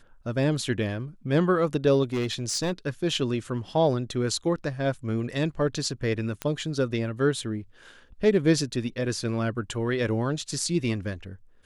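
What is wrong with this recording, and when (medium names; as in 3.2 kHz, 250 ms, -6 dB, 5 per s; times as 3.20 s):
2.03–2.73 s: clipped -23 dBFS
6.42 s: pop -14 dBFS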